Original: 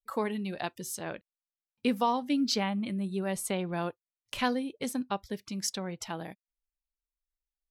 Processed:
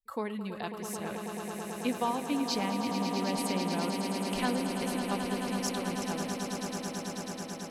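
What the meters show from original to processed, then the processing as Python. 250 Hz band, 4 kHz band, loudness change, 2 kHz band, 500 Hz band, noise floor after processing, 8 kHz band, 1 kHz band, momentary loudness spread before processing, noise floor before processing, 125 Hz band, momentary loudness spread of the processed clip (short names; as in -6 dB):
+0.5 dB, +0.5 dB, -0.5 dB, +0.5 dB, +0.5 dB, -41 dBFS, +0.5 dB, +0.5 dB, 10 LU, under -85 dBFS, +1.5 dB, 7 LU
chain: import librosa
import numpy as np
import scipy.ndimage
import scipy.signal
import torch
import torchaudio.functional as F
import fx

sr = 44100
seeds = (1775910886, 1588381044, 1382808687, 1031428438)

y = fx.low_shelf(x, sr, hz=66.0, db=9.5)
y = fx.echo_swell(y, sr, ms=109, loudest=8, wet_db=-9)
y = F.gain(torch.from_numpy(y), -4.0).numpy()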